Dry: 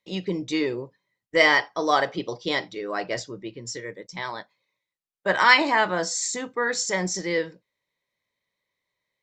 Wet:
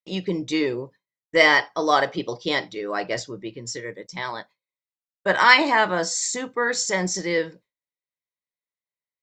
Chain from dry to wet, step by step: gate with hold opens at -47 dBFS; gain +2 dB

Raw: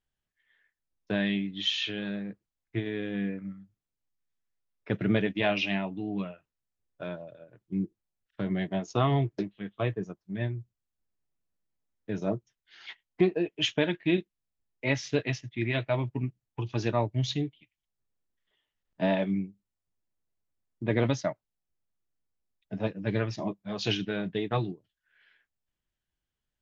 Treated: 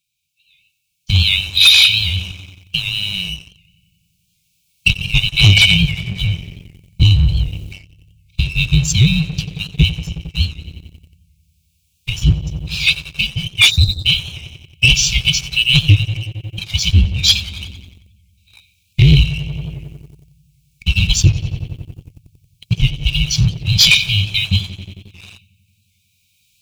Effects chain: band-swap scrambler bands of 500 Hz; recorder AGC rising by 8.4 dB/s; on a send: darkening echo 90 ms, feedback 79%, low-pass 4000 Hz, level -15 dB; on the sum: spectral delete 13.71–14.05, 1300–3600 Hz; HPF 42 Hz 6 dB/oct; in parallel at +1 dB: compressor 12:1, threshold -35 dBFS, peak gain reduction 17.5 dB; on the sum: soft clip -10 dBFS, distortion -29 dB; brick-wall FIR band-stop 190–2200 Hz; sample leveller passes 2; maximiser +15.5 dB; record warp 78 rpm, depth 100 cents; gain -1 dB

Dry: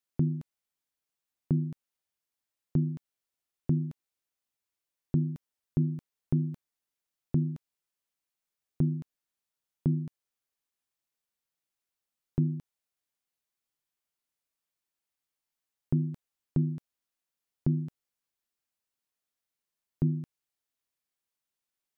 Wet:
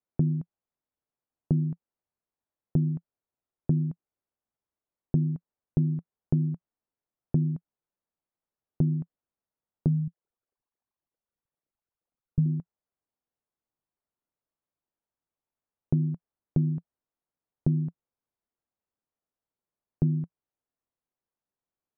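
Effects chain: 9.88–12.46 formant sharpening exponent 3; LPF 1000 Hz 12 dB/oct; dynamic EQ 170 Hz, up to +6 dB, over -40 dBFS, Q 3.7; compressor, threshold -24 dBFS, peak gain reduction 6 dB; gain +3.5 dB

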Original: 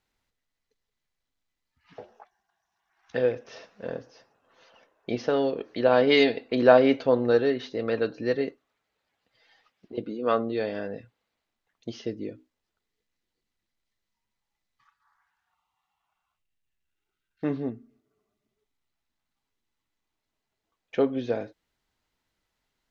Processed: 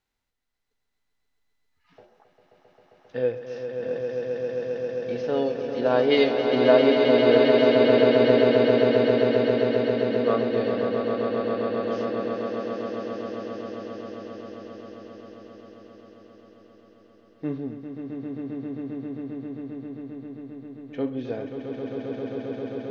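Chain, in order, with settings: harmonic-percussive split percussive -10 dB; swelling echo 0.133 s, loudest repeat 8, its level -6.5 dB

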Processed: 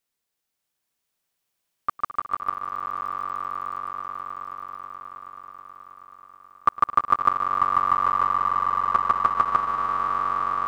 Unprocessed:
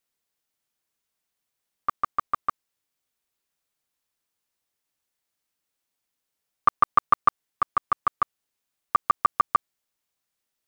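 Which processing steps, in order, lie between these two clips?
swelling echo 0.107 s, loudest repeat 8, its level -8.5 dB

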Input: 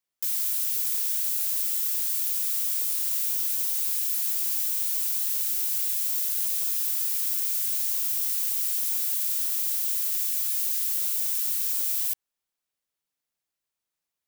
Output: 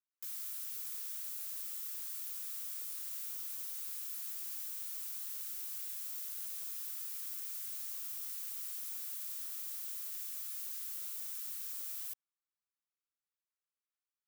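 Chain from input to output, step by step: ladder high-pass 1000 Hz, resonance 50%; gain -6 dB

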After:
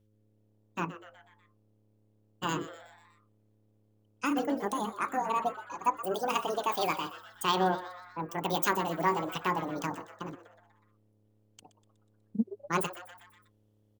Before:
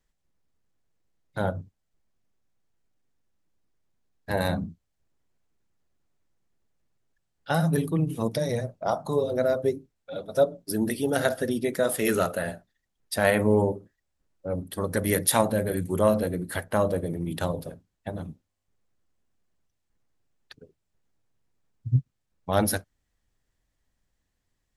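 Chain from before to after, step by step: hum 60 Hz, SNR 34 dB; frequency-shifting echo 0.217 s, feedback 54%, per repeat +100 Hz, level -14.5 dB; wide varispeed 1.77×; gain -5.5 dB

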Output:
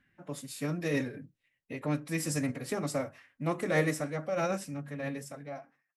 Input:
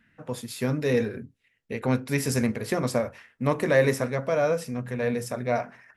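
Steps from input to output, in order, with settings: ending faded out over 1.21 s; formant-preserving pitch shift +2.5 st; dynamic EQ 8000 Hz, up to +6 dB, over -54 dBFS, Q 1.7; gain -7 dB

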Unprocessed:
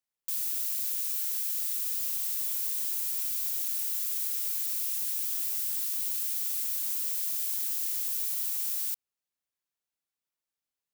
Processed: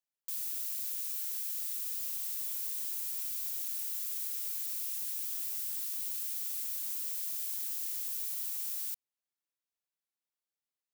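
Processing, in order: low shelf 95 Hz -8.5 dB; gain -5.5 dB

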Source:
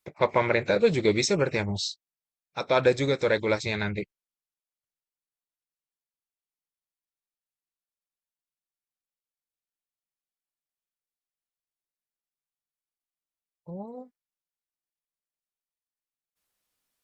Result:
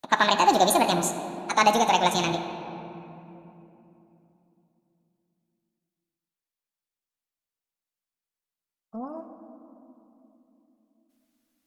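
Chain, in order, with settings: speed glide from 176% -> 116%; on a send: reverb RT60 3.2 s, pre-delay 4 ms, DRR 7 dB; on the sum: gain +2.5 dB

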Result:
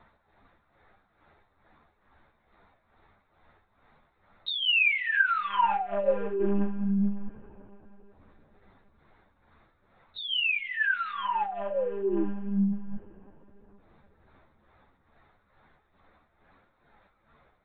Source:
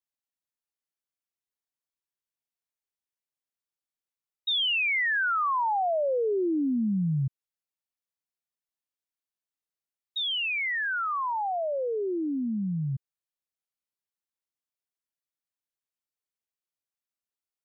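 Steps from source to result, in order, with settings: Wiener smoothing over 15 samples; low shelf 150 Hz -10.5 dB; upward compressor, threshold -34 dBFS; tremolo 2.3 Hz, depth 71%; on a send at -20.5 dB: reverb RT60 5.5 s, pre-delay 63 ms; on the sum: monotone LPC vocoder at 8 kHz 200 Hz; ensemble effect; gain +8 dB

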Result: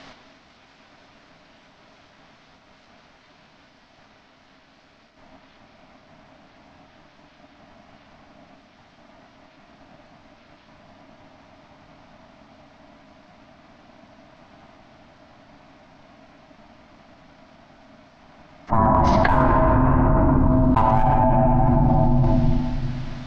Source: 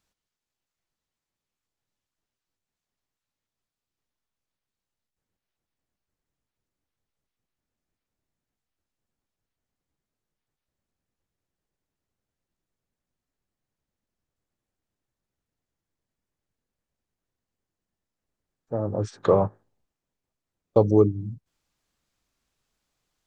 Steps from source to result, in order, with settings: elliptic band-pass 170–5200 Hz, stop band 40 dB; tone controls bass +4 dB, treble -10 dB; in parallel at -10 dB: wavefolder -19.5 dBFS; on the sum: ring modulator 450 Hz; on a send at -3.5 dB: reverb RT60 1.9 s, pre-delay 4 ms; on the sum: fast leveller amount 100%; gain -1 dB

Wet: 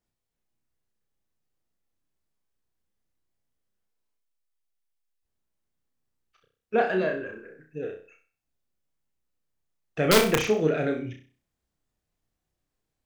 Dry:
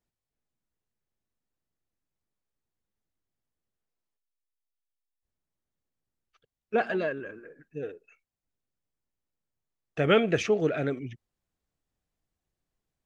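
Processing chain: wrapped overs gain 13 dB; flutter echo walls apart 5.5 m, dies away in 0.4 s; gain +1 dB

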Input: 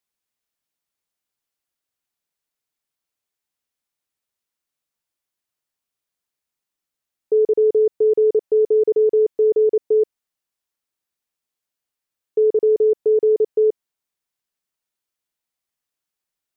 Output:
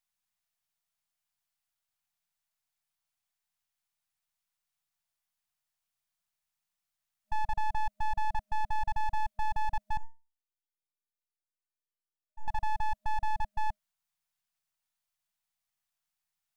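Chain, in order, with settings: half-wave gain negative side -7 dB; FFT band-reject 210–620 Hz; 9.97–12.48 resonator 300 Hz, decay 0.3 s, harmonics all, mix 100%

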